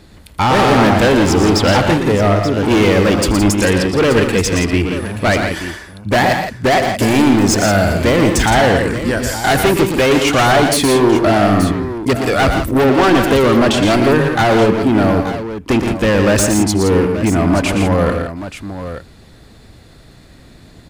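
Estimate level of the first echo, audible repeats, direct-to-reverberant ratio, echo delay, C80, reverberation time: -18.0 dB, 4, no reverb, 80 ms, no reverb, no reverb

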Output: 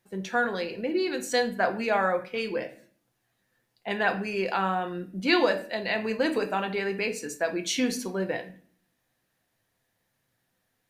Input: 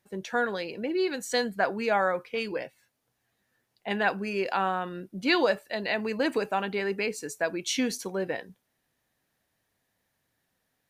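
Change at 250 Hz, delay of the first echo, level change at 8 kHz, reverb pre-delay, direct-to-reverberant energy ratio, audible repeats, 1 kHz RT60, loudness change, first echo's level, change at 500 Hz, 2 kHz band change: +1.5 dB, no echo, +0.5 dB, 6 ms, 5.5 dB, no echo, 0.40 s, +1.0 dB, no echo, +1.0 dB, +1.0 dB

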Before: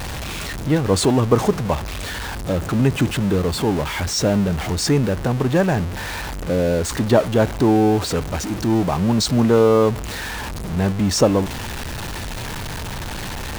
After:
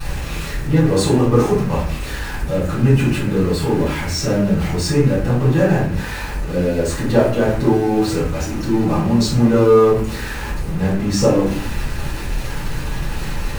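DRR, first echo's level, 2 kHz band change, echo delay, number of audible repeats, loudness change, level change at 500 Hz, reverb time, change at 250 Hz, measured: -11.5 dB, no echo, +1.0 dB, no echo, no echo, +2.0 dB, +2.0 dB, 0.50 s, +2.0 dB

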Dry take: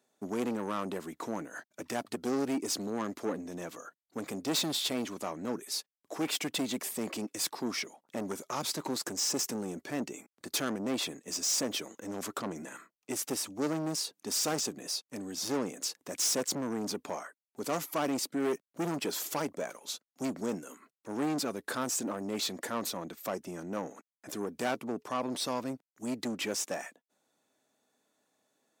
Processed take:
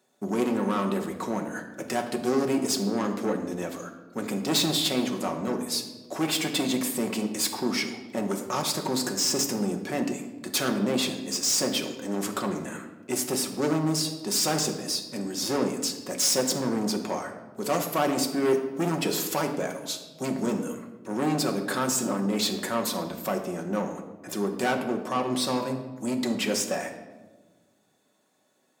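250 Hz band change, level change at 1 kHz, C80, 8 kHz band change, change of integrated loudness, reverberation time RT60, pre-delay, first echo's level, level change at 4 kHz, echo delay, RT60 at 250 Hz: +7.5 dB, +7.0 dB, 10.5 dB, +5.5 dB, +7.0 dB, 1.2 s, 5 ms, no echo, +6.5 dB, no echo, 1.9 s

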